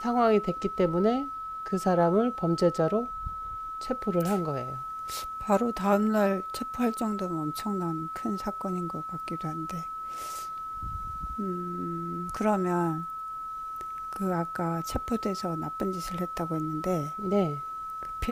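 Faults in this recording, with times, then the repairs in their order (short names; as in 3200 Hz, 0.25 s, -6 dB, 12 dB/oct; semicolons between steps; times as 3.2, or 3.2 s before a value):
tone 1300 Hz -34 dBFS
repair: notch 1300 Hz, Q 30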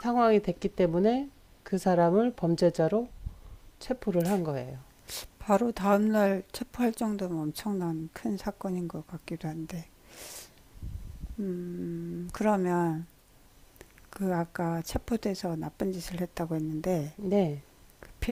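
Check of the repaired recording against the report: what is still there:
none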